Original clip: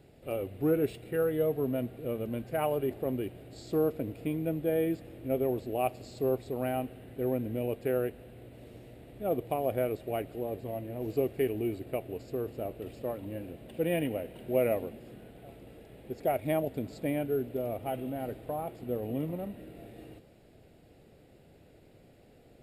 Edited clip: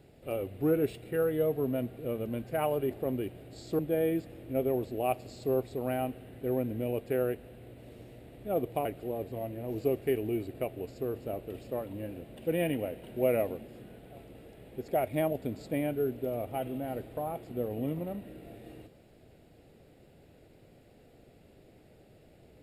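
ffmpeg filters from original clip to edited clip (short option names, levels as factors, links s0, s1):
-filter_complex "[0:a]asplit=3[s0][s1][s2];[s0]atrim=end=3.792[s3];[s1]atrim=start=4.538:end=9.602[s4];[s2]atrim=start=10.168[s5];[s3][s4]acrossfade=d=0.004:c1=hsin:c2=hsin[s6];[s6][s5]acrossfade=d=0.004:c1=hsin:c2=hsin"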